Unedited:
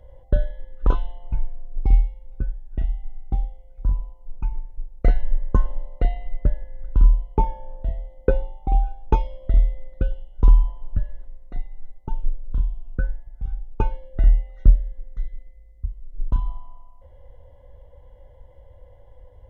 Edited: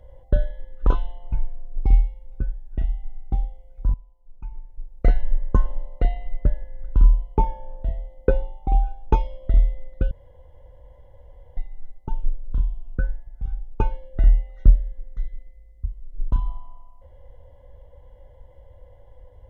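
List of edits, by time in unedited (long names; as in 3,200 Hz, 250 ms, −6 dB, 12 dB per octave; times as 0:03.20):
0:03.94–0:05.06: fade in quadratic, from −16 dB
0:10.11–0:11.57: fill with room tone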